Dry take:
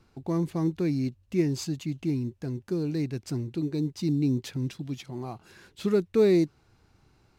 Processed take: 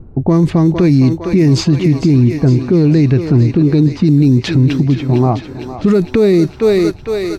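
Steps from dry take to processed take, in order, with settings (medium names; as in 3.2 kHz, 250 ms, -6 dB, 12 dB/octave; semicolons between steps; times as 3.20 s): level-controlled noise filter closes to 490 Hz, open at -21 dBFS; bass shelf 140 Hz +8 dB; feedback comb 630 Hz, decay 0.16 s, harmonics all, mix 50%; on a send: thinning echo 457 ms, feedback 68%, high-pass 420 Hz, level -10.5 dB; on the sum: loudness maximiser +30.5 dB; trim -2.5 dB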